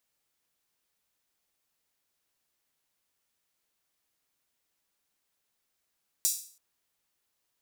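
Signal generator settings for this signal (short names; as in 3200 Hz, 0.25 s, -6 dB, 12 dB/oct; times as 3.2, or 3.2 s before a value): open hi-hat length 0.33 s, high-pass 6200 Hz, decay 0.46 s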